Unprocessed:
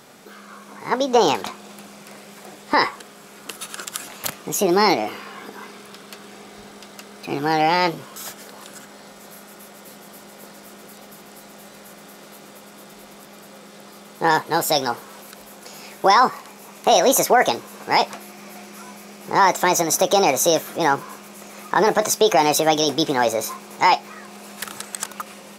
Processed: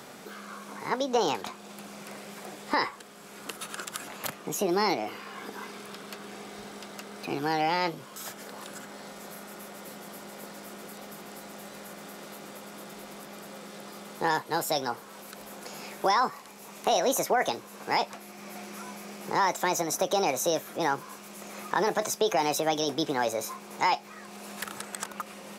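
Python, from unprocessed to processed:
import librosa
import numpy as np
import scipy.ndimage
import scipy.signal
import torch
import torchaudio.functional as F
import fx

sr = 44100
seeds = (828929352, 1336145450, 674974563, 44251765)

y = fx.band_squash(x, sr, depth_pct=40)
y = y * librosa.db_to_amplitude(-8.5)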